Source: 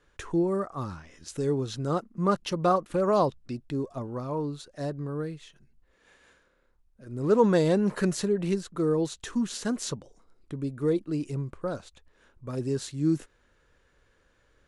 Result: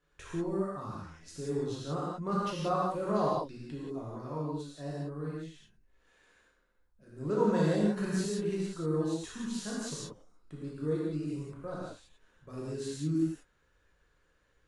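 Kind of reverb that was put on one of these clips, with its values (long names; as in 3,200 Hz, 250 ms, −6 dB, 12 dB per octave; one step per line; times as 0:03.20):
reverb whose tail is shaped and stops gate 210 ms flat, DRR −6.5 dB
level −12.5 dB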